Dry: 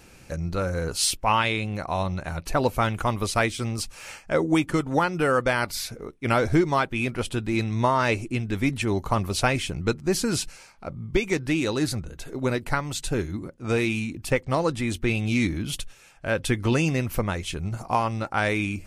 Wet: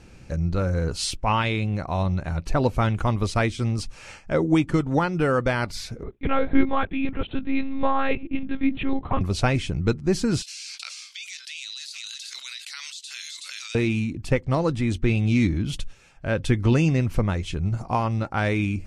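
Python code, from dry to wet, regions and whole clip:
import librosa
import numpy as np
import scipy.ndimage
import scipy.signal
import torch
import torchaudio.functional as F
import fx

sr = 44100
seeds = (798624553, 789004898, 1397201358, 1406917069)

y = fx.chain(x, sr, fx.highpass(hz=140.0, slope=24),
    fx.lpc_monotone(seeds[0], pitch_hz=270.0, order=10), at=(6.03, 9.21))
y = fx.chain(y, sr, fx.ladder_highpass(hz=2900.0, resonance_pct=30),
    fx.echo_single(ms=374, db=-20.5),
    fx.env_flatten(amount_pct=100), at=(10.42, 13.75))
y = scipy.signal.sosfilt(scipy.signal.butter(2, 7300.0, 'lowpass', fs=sr, output='sos'), y)
y = fx.low_shelf(y, sr, hz=310.0, db=9.0)
y = y * 10.0 ** (-2.5 / 20.0)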